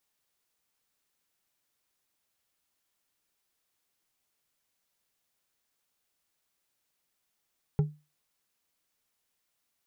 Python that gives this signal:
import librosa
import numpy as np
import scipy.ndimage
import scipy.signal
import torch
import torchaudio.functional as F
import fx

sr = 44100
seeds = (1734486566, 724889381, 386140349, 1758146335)

y = fx.strike_glass(sr, length_s=0.89, level_db=-18, body='bar', hz=150.0, decay_s=0.28, tilt_db=10.0, modes=5)